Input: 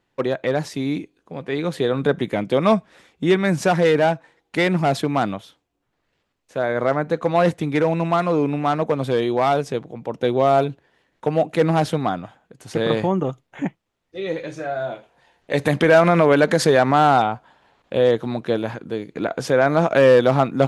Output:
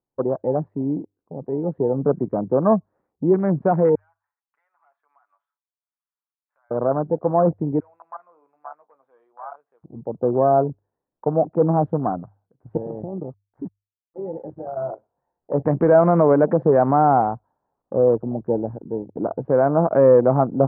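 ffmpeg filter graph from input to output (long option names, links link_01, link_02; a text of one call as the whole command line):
ffmpeg -i in.wav -filter_complex "[0:a]asettb=1/sr,asplit=3[link_01][link_02][link_03];[link_01]atrim=end=3.954[link_04];[link_02]atrim=start=3.95:end=6.71,asetpts=PTS-STARTPTS,afade=type=in:duration=0.004:curve=qsin,afade=type=out:start_time=2.756:duration=0.004:curve=qsin,highpass=frequency=1200:width=0.5412,highpass=frequency=1200:width=1.3066,acompressor=threshold=-41dB:ratio=3:attack=3.2:release=140:knee=1:detection=peak,aecho=1:1:7:0.54,atrim=end_sample=121716[link_05];[link_03]atrim=start=6.706[link_06];[link_04][link_05]acrossfade=duration=0.004:curve1=hsin:curve2=qsin[link_07];[link_07][link_06]acrossfade=duration=0.004:curve1=qsin:curve2=hsin,asettb=1/sr,asplit=3[link_08][link_09][link_10];[link_08]atrim=end=7.804[link_11];[link_09]atrim=start=7.8:end=9.84,asetpts=PTS-STARTPTS,afade=type=in:duration=0.004:curve=qsin,afade=type=out:start_time=2.036:duration=0.004:curve=qsin,highpass=1300,flanger=delay=6.3:depth=5.8:regen=-59:speed=1.1:shape=triangular[link_12];[link_10]atrim=start=9.836[link_13];[link_11][link_12]acrossfade=duration=0.004:curve1=hsin:curve2=qsin[link_14];[link_14][link_13]acrossfade=duration=0.004:curve1=qsin:curve2=hsin,asettb=1/sr,asplit=3[link_15][link_16][link_17];[link_15]atrim=end=12.774[link_18];[link_16]atrim=start=12.77:end=14.77,asetpts=PTS-STARTPTS,afade=type=in:duration=0.004:curve=qsin,afade=type=out:start_time=1.996:duration=0.004:curve=qsin,equalizer=frequency=2500:width=4.8:gain=-7,acompressor=threshold=-23dB:ratio=12:attack=3.2:release=140:knee=1:detection=peak,aeval=exprs='sgn(val(0))*max(abs(val(0))-0.00841,0)':channel_layout=same[link_19];[link_17]atrim=start=14.766[link_20];[link_18][link_19]acrossfade=duration=0.004:curve1=hsin:curve2=qsin[link_21];[link_21][link_20]acrossfade=duration=0.004:curve1=qsin:curve2=hsin,afwtdn=0.0562,lowpass=frequency=1100:width=0.5412,lowpass=frequency=1100:width=1.3066,bandreject=frequency=50:width_type=h:width=6,bandreject=frequency=100:width_type=h:width=6" out.wav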